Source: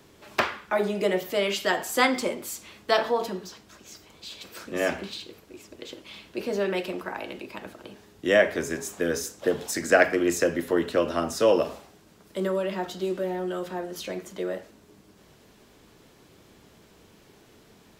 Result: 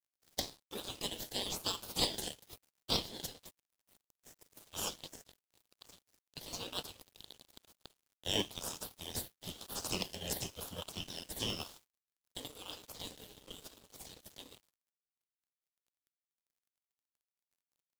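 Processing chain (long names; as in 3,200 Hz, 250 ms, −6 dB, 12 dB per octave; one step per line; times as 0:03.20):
gate on every frequency bin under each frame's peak −20 dB weak
elliptic band-stop filter 530–3,200 Hz
tilt shelving filter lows −3.5 dB, about 870 Hz
in parallel at −3.5 dB: sample-and-hold swept by an LFO 28×, swing 60% 1 Hz
on the sum: dead-zone distortion −51.5 dBFS
level +1 dB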